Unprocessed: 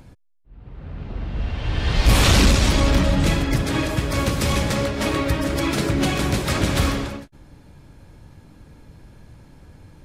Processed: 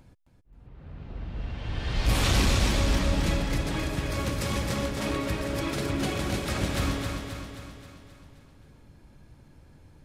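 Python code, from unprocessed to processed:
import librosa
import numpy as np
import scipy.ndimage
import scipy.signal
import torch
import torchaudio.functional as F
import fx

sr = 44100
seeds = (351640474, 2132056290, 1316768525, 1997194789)

y = fx.echo_feedback(x, sr, ms=265, feedback_pct=55, wet_db=-5.5)
y = y * librosa.db_to_amplitude(-9.0)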